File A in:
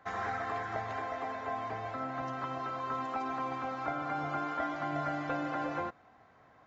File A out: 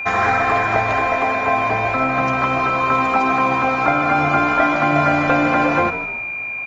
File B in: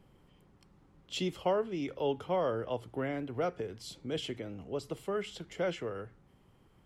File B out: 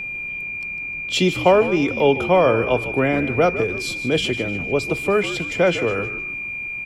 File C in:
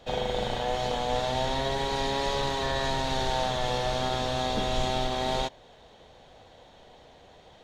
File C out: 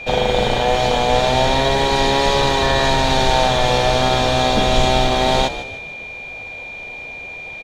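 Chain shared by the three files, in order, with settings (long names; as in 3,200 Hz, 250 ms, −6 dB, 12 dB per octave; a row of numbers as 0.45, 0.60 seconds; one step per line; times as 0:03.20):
steady tone 2,400 Hz −42 dBFS
echo with shifted repeats 152 ms, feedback 38%, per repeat −60 Hz, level −12.5 dB
normalise the peak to −3 dBFS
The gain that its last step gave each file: +18.0, +15.5, +12.0 decibels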